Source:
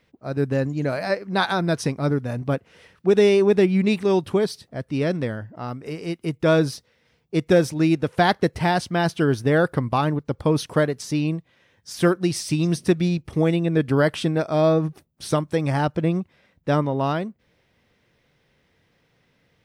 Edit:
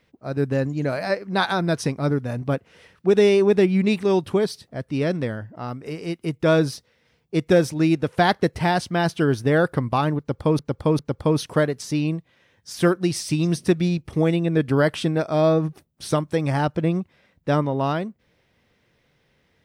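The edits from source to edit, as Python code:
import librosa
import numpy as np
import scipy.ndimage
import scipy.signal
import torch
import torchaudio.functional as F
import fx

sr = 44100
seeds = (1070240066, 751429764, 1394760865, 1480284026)

y = fx.edit(x, sr, fx.repeat(start_s=10.19, length_s=0.4, count=3), tone=tone)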